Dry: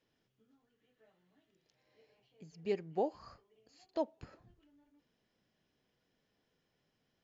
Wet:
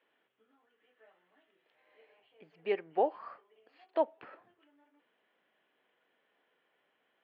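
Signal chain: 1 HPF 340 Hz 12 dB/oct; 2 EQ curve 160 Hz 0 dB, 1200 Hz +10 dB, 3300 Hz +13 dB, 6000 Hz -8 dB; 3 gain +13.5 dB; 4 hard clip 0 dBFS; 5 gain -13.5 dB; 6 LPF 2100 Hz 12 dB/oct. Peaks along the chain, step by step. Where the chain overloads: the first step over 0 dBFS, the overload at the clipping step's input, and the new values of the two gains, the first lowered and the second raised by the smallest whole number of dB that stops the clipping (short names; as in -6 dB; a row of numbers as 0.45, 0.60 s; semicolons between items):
-22.5, -16.5, -3.0, -3.0, -16.5, -16.5 dBFS; no overload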